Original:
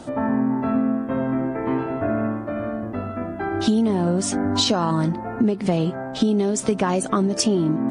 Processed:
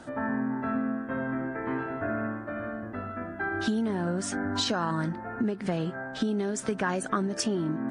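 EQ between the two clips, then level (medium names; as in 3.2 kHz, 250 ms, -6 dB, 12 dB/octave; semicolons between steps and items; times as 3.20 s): peaking EQ 1.6 kHz +12 dB 0.57 oct; -9.0 dB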